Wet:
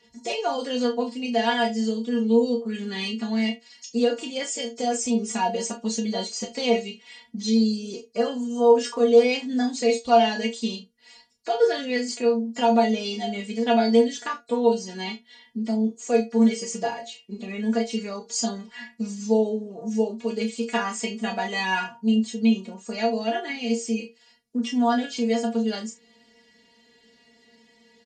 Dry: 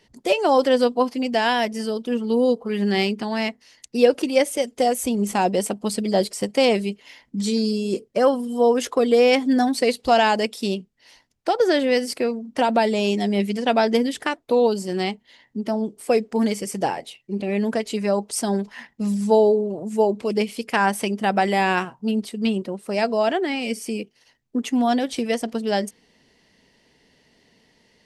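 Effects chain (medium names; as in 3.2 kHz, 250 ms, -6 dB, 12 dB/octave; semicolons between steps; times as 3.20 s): knee-point frequency compression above 3.9 kHz 1.5:1; high-pass 44 Hz; treble shelf 5 kHz +8.5 dB; in parallel at +1 dB: compression, threshold -33 dBFS, peak gain reduction 21.5 dB; on the sum: inharmonic resonator 230 Hz, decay 0.2 s, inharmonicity 0.002; early reflections 32 ms -6.5 dB, 69 ms -17.5 dB; trim +4 dB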